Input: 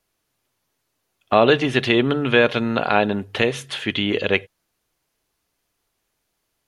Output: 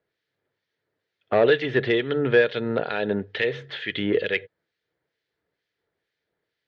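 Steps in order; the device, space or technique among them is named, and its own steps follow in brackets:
0:02.44–0:03.06: parametric band 2,100 Hz −5.5 dB 0.84 octaves
guitar amplifier with harmonic tremolo (two-band tremolo in antiphase 2.2 Hz, crossover 1,700 Hz; soft clipping −9.5 dBFS, distortion −15 dB; loudspeaker in its box 98–4,000 Hz, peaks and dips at 240 Hz −6 dB, 460 Hz +7 dB, 770 Hz −5 dB, 1,100 Hz −9 dB, 1,800 Hz +6 dB, 2,700 Hz −6 dB)

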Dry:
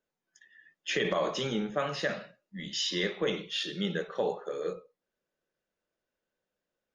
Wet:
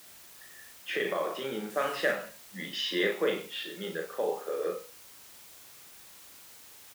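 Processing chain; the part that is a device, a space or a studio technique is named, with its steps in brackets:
shortwave radio (band-pass filter 300–2,600 Hz; amplitude tremolo 0.38 Hz, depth 56%; white noise bed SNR 17 dB)
high-pass filter 41 Hz
hum removal 72.82 Hz, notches 4
0:01.70–0:02.12: parametric band 7,800 Hz +5 dB 2.6 octaves
double-tracking delay 37 ms −5 dB
level +5 dB

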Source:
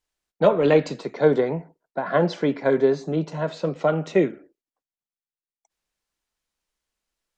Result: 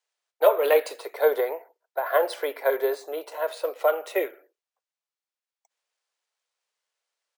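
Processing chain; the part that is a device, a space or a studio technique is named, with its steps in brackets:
crushed at another speed (tape speed factor 0.8×; decimation without filtering 4×; tape speed factor 1.25×)
Butterworth high-pass 450 Hz 36 dB per octave

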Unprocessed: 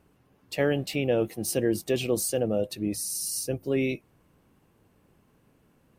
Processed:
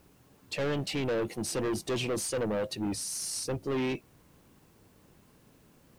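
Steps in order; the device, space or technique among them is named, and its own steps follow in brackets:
compact cassette (soft clipping −29.5 dBFS, distortion −6 dB; low-pass filter 8,400 Hz 12 dB per octave; tape wow and flutter; white noise bed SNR 35 dB)
level +2.5 dB

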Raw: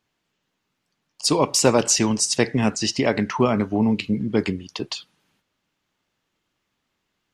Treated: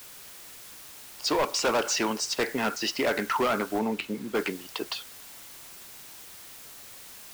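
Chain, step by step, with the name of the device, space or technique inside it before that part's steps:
drive-through speaker (band-pass filter 410–3,900 Hz; parametric band 1,400 Hz +9 dB 0.27 octaves; hard clipping −21 dBFS, distortion −7 dB; white noise bed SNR 15 dB)
0:03.79–0:04.35: high-shelf EQ 4,700 Hz −7 dB

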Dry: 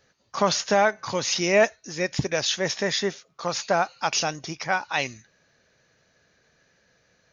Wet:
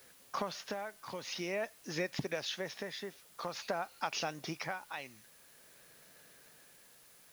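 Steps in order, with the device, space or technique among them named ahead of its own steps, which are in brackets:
medium wave at night (band-pass filter 150–4,200 Hz; downward compressor, threshold −34 dBFS, peak gain reduction 18 dB; amplitude tremolo 0.49 Hz, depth 56%; steady tone 10,000 Hz −69 dBFS; white noise bed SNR 20 dB)
level +1 dB

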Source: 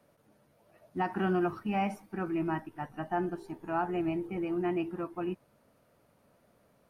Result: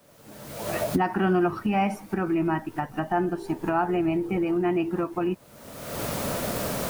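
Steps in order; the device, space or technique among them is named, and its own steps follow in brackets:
cheap recorder with automatic gain (white noise bed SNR 38 dB; camcorder AGC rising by 40 dB per second)
level +6.5 dB

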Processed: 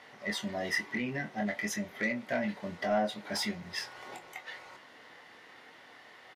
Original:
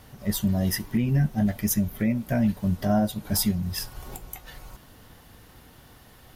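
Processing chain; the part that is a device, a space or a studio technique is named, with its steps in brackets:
intercom (band-pass filter 430–4,400 Hz; parametric band 2,000 Hz +10.5 dB 0.27 octaves; soft clipping −23 dBFS, distortion −17 dB; double-tracking delay 24 ms −8 dB)

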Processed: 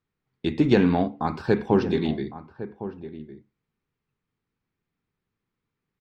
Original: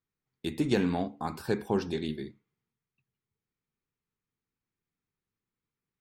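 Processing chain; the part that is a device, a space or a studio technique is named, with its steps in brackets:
shout across a valley (high-frequency loss of the air 180 metres; slap from a distant wall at 190 metres, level −13 dB)
level +8.5 dB

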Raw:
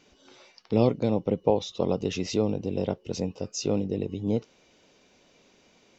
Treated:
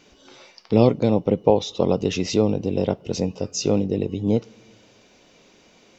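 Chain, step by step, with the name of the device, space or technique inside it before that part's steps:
compressed reverb return (on a send at −11.5 dB: convolution reverb RT60 0.90 s, pre-delay 5 ms + downward compressor 10 to 1, threshold −38 dBFS, peak gain reduction 20.5 dB)
on the sum: level +6 dB

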